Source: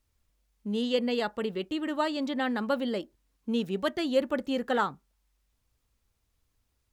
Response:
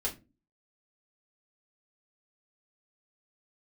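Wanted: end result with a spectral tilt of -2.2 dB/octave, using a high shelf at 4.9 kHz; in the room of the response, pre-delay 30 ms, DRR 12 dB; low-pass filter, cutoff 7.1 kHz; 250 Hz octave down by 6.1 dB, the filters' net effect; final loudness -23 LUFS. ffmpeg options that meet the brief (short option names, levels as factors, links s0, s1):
-filter_complex "[0:a]lowpass=7100,equalizer=f=250:t=o:g=-7,highshelf=f=4900:g=-5.5,asplit=2[s0][s1];[1:a]atrim=start_sample=2205,adelay=30[s2];[s1][s2]afir=irnorm=-1:irlink=0,volume=0.168[s3];[s0][s3]amix=inputs=2:normalize=0,volume=2.82"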